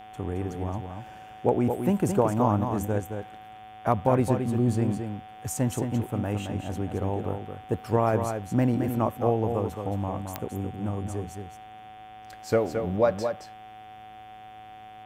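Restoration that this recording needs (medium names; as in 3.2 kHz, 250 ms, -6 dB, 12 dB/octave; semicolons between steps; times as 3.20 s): de-click; de-hum 108.2 Hz, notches 33; band-stop 750 Hz, Q 30; inverse comb 220 ms -6.5 dB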